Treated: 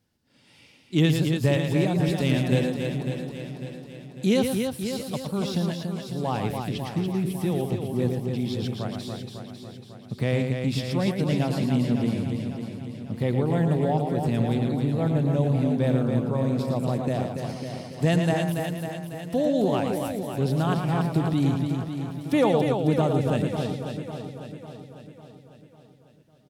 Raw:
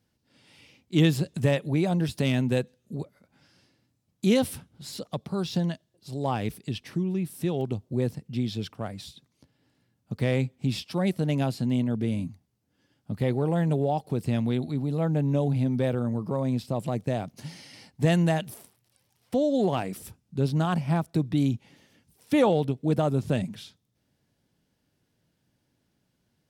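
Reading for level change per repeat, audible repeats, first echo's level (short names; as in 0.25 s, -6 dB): no steady repeat, 15, -6.5 dB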